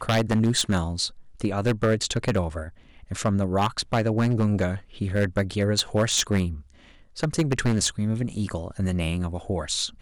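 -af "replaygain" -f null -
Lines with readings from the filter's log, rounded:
track_gain = +6.1 dB
track_peak = 0.145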